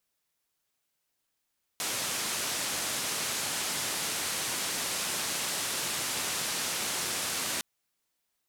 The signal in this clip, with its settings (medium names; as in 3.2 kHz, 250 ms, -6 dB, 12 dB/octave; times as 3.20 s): noise band 110–10000 Hz, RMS -32.5 dBFS 5.81 s